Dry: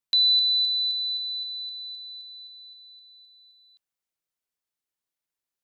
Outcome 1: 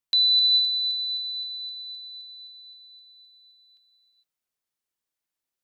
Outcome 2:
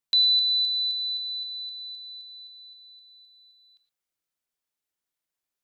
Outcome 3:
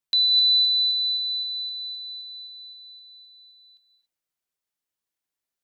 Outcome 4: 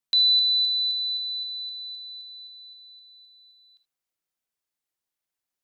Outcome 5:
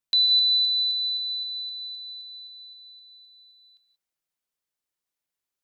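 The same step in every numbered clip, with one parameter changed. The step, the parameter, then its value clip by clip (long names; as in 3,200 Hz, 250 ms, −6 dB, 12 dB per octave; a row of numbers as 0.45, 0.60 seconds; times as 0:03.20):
reverb whose tail is shaped and stops, gate: 480, 130, 300, 90, 200 milliseconds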